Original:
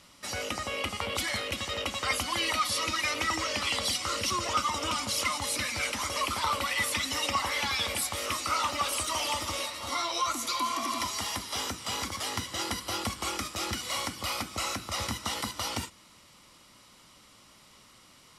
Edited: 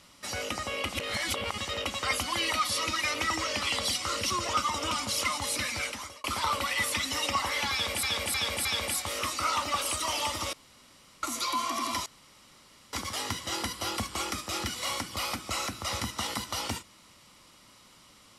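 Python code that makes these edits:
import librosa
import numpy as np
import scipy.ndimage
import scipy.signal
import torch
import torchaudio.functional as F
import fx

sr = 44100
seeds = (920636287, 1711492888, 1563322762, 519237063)

y = fx.edit(x, sr, fx.reverse_span(start_s=0.93, length_s=0.65),
    fx.fade_out_span(start_s=5.73, length_s=0.51),
    fx.repeat(start_s=7.72, length_s=0.31, count=4),
    fx.room_tone_fill(start_s=9.6, length_s=0.7),
    fx.room_tone_fill(start_s=11.13, length_s=0.87), tone=tone)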